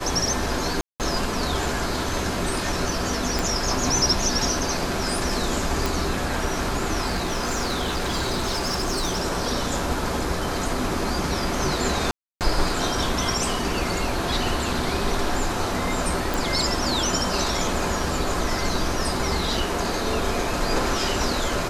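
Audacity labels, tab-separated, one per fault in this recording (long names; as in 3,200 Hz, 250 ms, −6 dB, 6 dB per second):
0.810000	1.000000	drop-out 188 ms
3.390000	3.390000	click
5.860000	5.860000	click
7.080000	9.220000	clipping −20.5 dBFS
12.110000	12.410000	drop-out 298 ms
16.340000	16.340000	click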